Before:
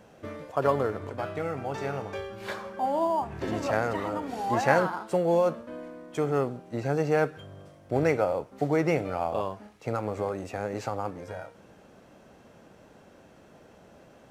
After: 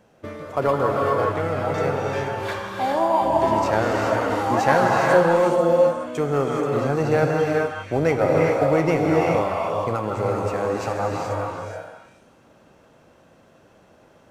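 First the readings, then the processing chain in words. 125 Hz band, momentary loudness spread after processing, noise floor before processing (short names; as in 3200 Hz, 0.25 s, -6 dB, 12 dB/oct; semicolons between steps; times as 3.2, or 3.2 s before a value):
+7.5 dB, 9 LU, -55 dBFS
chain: gate -45 dBFS, range -8 dB; in parallel at -3 dB: soft clip -19.5 dBFS, distortion -14 dB; on the sum: delay with a stepping band-pass 0.161 s, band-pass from 1100 Hz, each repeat 1.4 oct, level -2 dB; non-linear reverb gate 0.45 s rising, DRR -0.5 dB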